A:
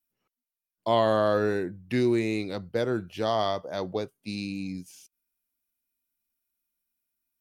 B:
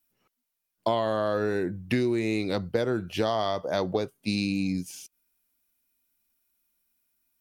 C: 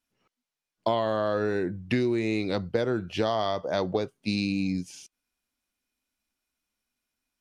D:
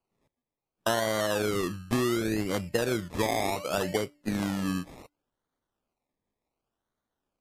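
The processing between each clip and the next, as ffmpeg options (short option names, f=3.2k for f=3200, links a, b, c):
-af "acompressor=threshold=-30dB:ratio=12,volume=8dB"
-af "lowpass=6.8k"
-af "bandreject=f=293:t=h:w=4,bandreject=f=586:t=h:w=4,bandreject=f=879:t=h:w=4,acrusher=samples=24:mix=1:aa=0.000001:lfo=1:lforange=14.4:lforate=0.68,volume=-1dB" -ar 32000 -c:a libmp3lame -b:a 56k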